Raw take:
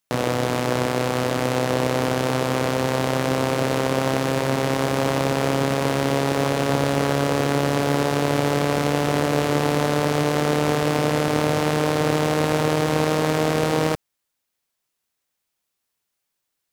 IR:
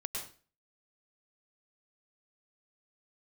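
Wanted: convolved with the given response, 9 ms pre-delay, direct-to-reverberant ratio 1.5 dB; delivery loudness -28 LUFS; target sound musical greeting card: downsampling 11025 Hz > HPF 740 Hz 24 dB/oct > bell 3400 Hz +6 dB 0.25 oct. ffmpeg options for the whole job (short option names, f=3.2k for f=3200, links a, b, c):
-filter_complex "[0:a]asplit=2[a][b];[1:a]atrim=start_sample=2205,adelay=9[c];[b][c]afir=irnorm=-1:irlink=0,volume=-2.5dB[d];[a][d]amix=inputs=2:normalize=0,aresample=11025,aresample=44100,highpass=f=740:w=0.5412,highpass=f=740:w=1.3066,equalizer=f=3.4k:t=o:w=0.25:g=6,volume=-3.5dB"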